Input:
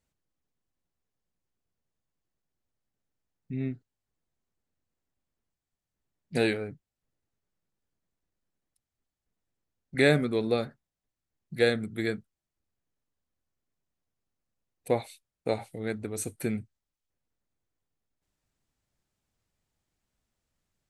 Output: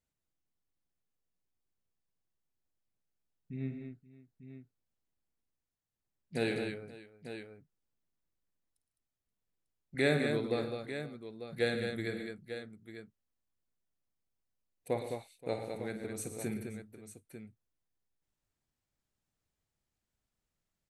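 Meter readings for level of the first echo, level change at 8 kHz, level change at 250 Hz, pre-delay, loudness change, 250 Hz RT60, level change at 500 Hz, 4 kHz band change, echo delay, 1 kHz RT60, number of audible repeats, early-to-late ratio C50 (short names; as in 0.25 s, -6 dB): -10.5 dB, -5.5 dB, -5.5 dB, none, -7.5 dB, none, -6.0 dB, -5.5 dB, 52 ms, none, 6, none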